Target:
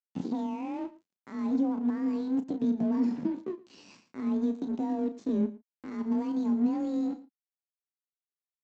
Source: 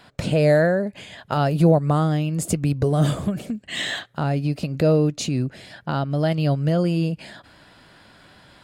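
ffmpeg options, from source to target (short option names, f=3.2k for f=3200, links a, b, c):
-filter_complex "[0:a]afreqshift=23,aresample=11025,aeval=exprs='sgn(val(0))*max(abs(val(0))-0.0299,0)':c=same,aresample=44100,asetrate=64194,aresample=44100,atempo=0.686977,crystalizer=i=9:c=0,asplit=2[a][b];[b]aecho=0:1:113:0.0891[c];[a][c]amix=inputs=2:normalize=0,dynaudnorm=f=470:g=9:m=11.5dB,asplit=2[d][e];[e]adelay=34,volume=-11dB[f];[d][f]amix=inputs=2:normalize=0,acompressor=threshold=-19dB:ratio=3,alimiter=limit=-15.5dB:level=0:latency=1:release=53,bandpass=f=220:t=q:w=2:csg=0,volume=2.5dB"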